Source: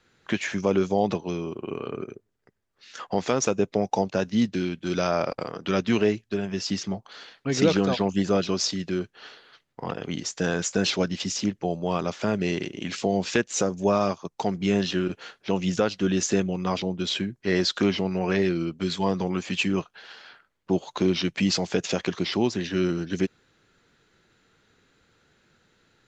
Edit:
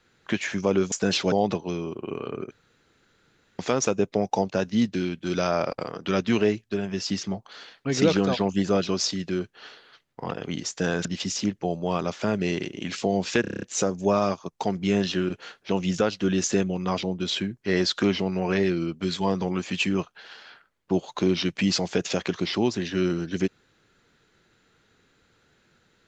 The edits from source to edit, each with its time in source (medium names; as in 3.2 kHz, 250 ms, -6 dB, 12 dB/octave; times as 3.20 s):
2.11–3.19 s: room tone
10.65–11.05 s: move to 0.92 s
13.41 s: stutter 0.03 s, 8 plays